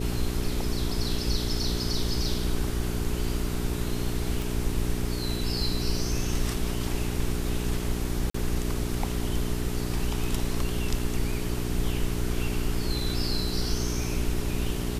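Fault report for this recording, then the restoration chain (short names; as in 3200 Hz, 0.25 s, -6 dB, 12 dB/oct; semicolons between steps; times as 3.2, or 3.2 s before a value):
hum 60 Hz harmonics 7 -31 dBFS
4.42 pop
8.3–8.34 gap 44 ms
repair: de-click; de-hum 60 Hz, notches 7; interpolate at 8.3, 44 ms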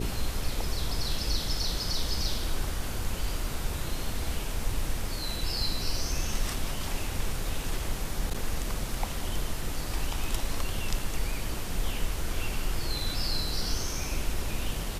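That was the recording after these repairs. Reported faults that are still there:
none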